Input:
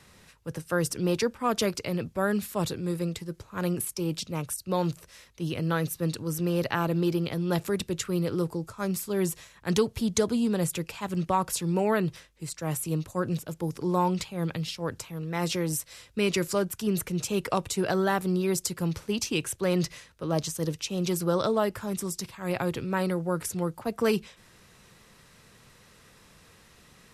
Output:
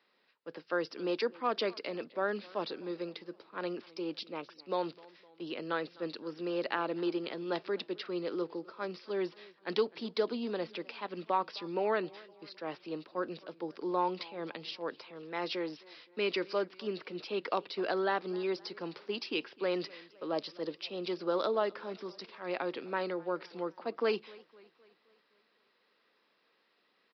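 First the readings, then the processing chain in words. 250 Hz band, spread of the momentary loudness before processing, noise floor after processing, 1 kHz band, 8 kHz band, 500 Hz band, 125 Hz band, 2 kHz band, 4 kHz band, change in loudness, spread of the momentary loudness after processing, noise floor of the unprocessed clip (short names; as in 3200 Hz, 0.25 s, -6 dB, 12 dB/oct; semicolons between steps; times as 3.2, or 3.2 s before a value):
-10.5 dB, 7 LU, -73 dBFS, -4.5 dB, under -30 dB, -4.5 dB, -21.0 dB, -4.5 dB, -5.0 dB, -7.0 dB, 10 LU, -57 dBFS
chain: gate -49 dBFS, range -10 dB; HPF 280 Hz 24 dB/oct; downsampling 11025 Hz; warbling echo 0.258 s, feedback 51%, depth 118 cents, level -23 dB; gain -4.5 dB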